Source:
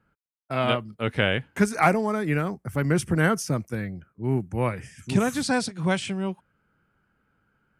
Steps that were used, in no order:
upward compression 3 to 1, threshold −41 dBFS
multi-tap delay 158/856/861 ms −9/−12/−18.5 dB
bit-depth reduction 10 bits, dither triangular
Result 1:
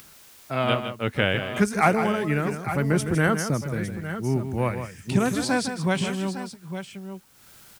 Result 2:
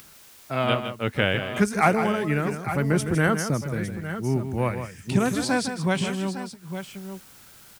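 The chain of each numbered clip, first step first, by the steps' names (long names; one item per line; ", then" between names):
bit-depth reduction, then multi-tap delay, then upward compression
bit-depth reduction, then upward compression, then multi-tap delay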